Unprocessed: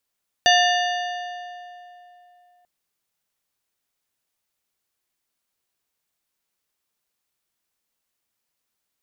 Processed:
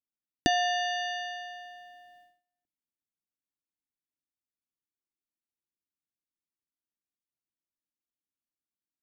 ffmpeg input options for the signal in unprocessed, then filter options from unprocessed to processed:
-f lavfi -i "aevalsrc='0.178*pow(10,-3*t/3.1)*sin(2*PI*713*t)+0.141*pow(10,-3*t/2.355)*sin(2*PI*1782.5*t)+0.112*pow(10,-3*t/2.045)*sin(2*PI*2852*t)+0.0891*pow(10,-3*t/1.913)*sin(2*PI*3565*t)+0.0708*pow(10,-3*t/1.768)*sin(2*PI*4634.5*t)+0.0562*pow(10,-3*t/1.631)*sin(2*PI*6060.5*t)':d=2.19:s=44100"
-filter_complex "[0:a]agate=range=-27dB:threshold=-52dB:ratio=16:detection=peak,lowshelf=f=430:t=q:w=3:g=11.5,acrossover=split=1000[a][b];[b]acompressor=threshold=-31dB:ratio=4[c];[a][c]amix=inputs=2:normalize=0"

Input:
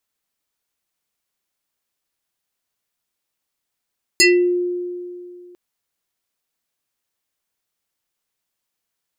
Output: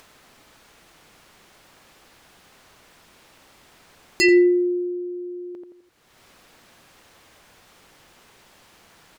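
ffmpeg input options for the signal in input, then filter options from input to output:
-f lavfi -i "aevalsrc='0.398*pow(10,-3*t/2.45)*sin(2*PI*355*t+3.9*pow(10,-3*t/0.34)*sin(2*PI*6.6*355*t))':d=1.35:s=44100"
-filter_complex "[0:a]aemphasis=mode=reproduction:type=75kf,asplit=2[a][b];[b]adelay=85,lowpass=f=1.4k:p=1,volume=-5dB,asplit=2[c][d];[d]adelay=85,lowpass=f=1.4k:p=1,volume=0.33,asplit=2[e][f];[f]adelay=85,lowpass=f=1.4k:p=1,volume=0.33,asplit=2[g][h];[h]adelay=85,lowpass=f=1.4k:p=1,volume=0.33[i];[c][e][g][i]amix=inputs=4:normalize=0[j];[a][j]amix=inputs=2:normalize=0,acompressor=mode=upward:threshold=-27dB:ratio=2.5"

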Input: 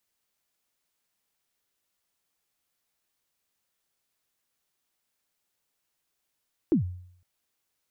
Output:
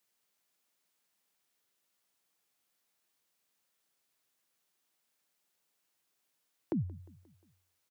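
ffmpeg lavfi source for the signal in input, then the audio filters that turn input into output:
-f lavfi -i "aevalsrc='0.158*pow(10,-3*t/0.64)*sin(2*PI*(370*0.113/log(90/370)*(exp(log(90/370)*min(t,0.113)/0.113)-1)+90*max(t-0.113,0)))':d=0.51:s=44100"
-filter_complex "[0:a]acrossover=split=170[a][b];[b]acompressor=threshold=-36dB:ratio=6[c];[a][c]amix=inputs=2:normalize=0,highpass=130,aecho=1:1:177|354|531|708:0.075|0.0405|0.0219|0.0118"

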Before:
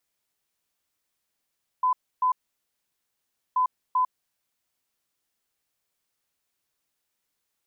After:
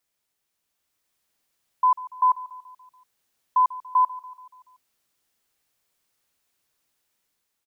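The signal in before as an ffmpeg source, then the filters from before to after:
-f lavfi -i "aevalsrc='0.112*sin(2*PI*1010*t)*clip(min(mod(mod(t,1.73),0.39),0.1-mod(mod(t,1.73),0.39))/0.005,0,1)*lt(mod(t,1.73),0.78)':d=3.46:s=44100"
-af "dynaudnorm=f=650:g=3:m=5dB,aecho=1:1:143|286|429|572|715:0.133|0.0733|0.0403|0.0222|0.0122"

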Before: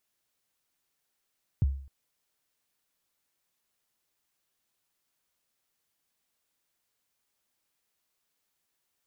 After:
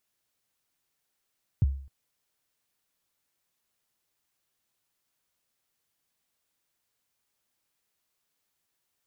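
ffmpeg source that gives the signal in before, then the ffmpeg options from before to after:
-f lavfi -i "aevalsrc='0.126*pow(10,-3*t/0.51)*sin(2*PI*(150*0.024/log(68/150)*(exp(log(68/150)*min(t,0.024)/0.024)-1)+68*max(t-0.024,0)))':d=0.26:s=44100"
-af "equalizer=f=110:w=1.5:g=3"

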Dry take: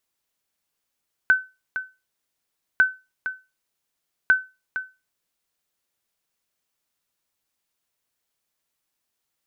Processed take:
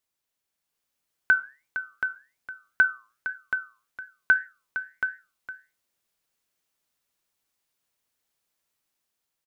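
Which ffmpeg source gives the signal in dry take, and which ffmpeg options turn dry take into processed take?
-f lavfi -i "aevalsrc='0.376*(sin(2*PI*1520*mod(t,1.5))*exp(-6.91*mod(t,1.5)/0.26)+0.266*sin(2*PI*1520*max(mod(t,1.5)-0.46,0))*exp(-6.91*max(mod(t,1.5)-0.46,0)/0.26))':d=4.5:s=44100"
-filter_complex "[0:a]dynaudnorm=f=300:g=5:m=4dB,flanger=delay=5.5:depth=3.8:regen=-86:speed=1.8:shape=triangular,asplit=2[a][b];[b]aecho=0:1:727:0.398[c];[a][c]amix=inputs=2:normalize=0"

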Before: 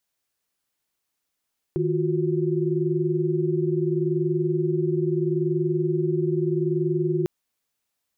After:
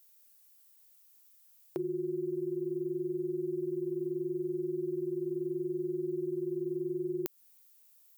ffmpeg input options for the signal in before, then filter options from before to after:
-f lavfi -i "aevalsrc='0.0562*(sin(2*PI*155.56*t)+sin(2*PI*349.23*t)+sin(2*PI*369.99*t))':d=5.5:s=44100"
-af "highpass=350,aemphasis=mode=production:type=75fm,acompressor=threshold=-32dB:ratio=5"

